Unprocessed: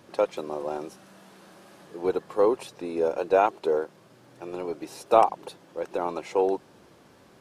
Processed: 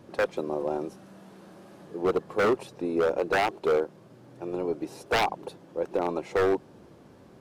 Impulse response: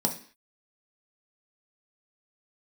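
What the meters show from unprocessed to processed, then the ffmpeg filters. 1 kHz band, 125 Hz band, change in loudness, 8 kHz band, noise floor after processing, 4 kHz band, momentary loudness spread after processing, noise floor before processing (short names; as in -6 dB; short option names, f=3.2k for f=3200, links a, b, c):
-4.0 dB, +6.0 dB, -1.5 dB, n/a, -53 dBFS, +6.5 dB, 11 LU, -56 dBFS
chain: -af "tiltshelf=f=780:g=5.5,aeval=exprs='0.141*(abs(mod(val(0)/0.141+3,4)-2)-1)':c=same"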